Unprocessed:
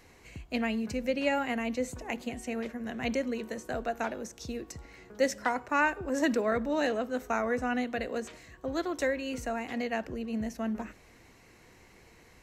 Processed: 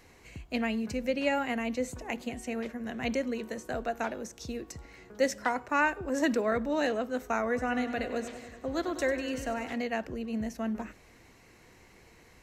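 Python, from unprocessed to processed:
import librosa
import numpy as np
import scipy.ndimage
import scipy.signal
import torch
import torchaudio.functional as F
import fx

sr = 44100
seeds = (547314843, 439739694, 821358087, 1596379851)

y = fx.echo_warbled(x, sr, ms=98, feedback_pct=69, rate_hz=2.8, cents=55, wet_db=-12.0, at=(7.45, 9.76))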